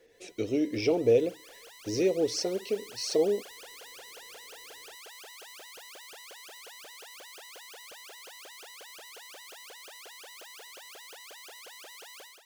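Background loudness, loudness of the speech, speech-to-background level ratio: −46.5 LKFS, −28.5 LKFS, 18.0 dB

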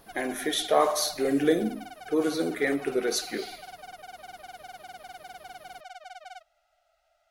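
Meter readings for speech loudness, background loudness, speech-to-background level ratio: −27.0 LKFS, −45.0 LKFS, 18.0 dB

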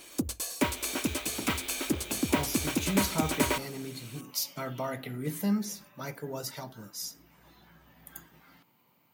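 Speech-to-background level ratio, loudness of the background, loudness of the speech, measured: −4.5 dB, −30.5 LKFS, −35.0 LKFS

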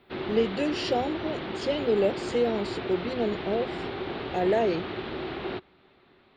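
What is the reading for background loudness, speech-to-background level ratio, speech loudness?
−34.5 LKFS, 6.0 dB, −28.5 LKFS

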